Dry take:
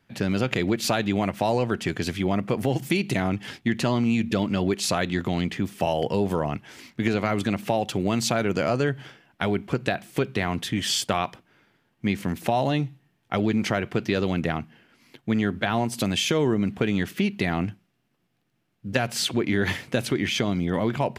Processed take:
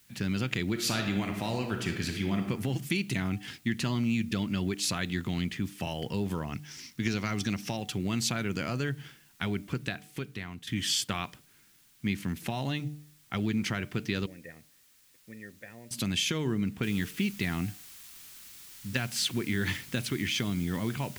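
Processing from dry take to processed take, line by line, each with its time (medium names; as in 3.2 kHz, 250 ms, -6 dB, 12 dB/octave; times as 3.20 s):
0.71–2.38 s: reverb throw, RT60 0.97 s, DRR 3.5 dB
6.52–7.77 s: peaking EQ 5.6 kHz +14.5 dB 0.37 oct
9.66–10.67 s: fade out, to -12 dB
14.26–15.91 s: cascade formant filter e
16.83 s: noise floor step -59 dB -46 dB
whole clip: peaking EQ 610 Hz -12.5 dB 1.6 oct; de-hum 149.2 Hz, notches 5; trim -3 dB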